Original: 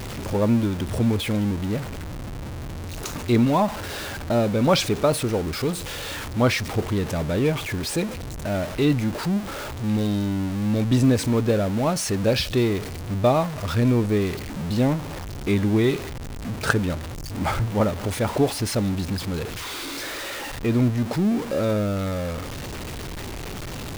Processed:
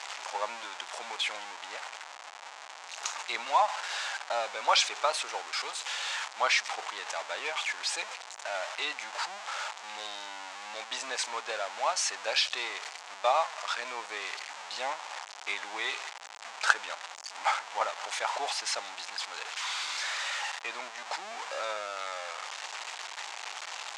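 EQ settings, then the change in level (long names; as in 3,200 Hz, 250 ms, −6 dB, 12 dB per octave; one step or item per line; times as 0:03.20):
elliptic band-pass filter 800–7,400 Hz, stop band 80 dB
0.0 dB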